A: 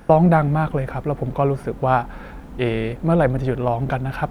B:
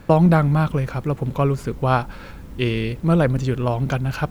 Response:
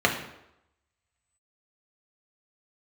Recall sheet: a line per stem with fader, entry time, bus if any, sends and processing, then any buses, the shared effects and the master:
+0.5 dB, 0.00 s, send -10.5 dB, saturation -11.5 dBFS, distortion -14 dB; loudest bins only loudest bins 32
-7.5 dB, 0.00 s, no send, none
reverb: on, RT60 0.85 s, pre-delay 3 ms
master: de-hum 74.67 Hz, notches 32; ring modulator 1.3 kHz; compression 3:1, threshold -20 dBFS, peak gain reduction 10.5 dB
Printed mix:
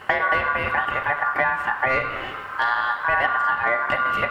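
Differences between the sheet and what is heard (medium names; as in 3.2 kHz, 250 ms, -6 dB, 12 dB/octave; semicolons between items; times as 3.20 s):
stem A: missing loudest bins only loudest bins 32; master: missing de-hum 74.67 Hz, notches 32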